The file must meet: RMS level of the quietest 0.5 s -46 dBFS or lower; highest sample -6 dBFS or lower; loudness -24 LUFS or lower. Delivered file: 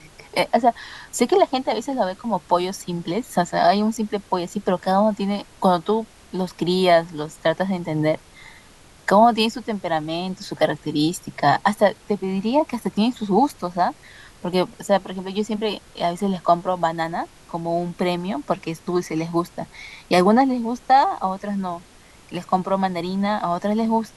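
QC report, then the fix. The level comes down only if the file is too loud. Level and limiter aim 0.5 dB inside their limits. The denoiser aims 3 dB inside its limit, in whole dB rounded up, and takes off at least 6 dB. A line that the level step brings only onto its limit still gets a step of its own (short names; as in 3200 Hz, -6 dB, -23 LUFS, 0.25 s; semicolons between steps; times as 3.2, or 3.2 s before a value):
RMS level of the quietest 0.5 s -48 dBFS: OK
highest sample -3.0 dBFS: fail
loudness -22.0 LUFS: fail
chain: gain -2.5 dB; limiter -6.5 dBFS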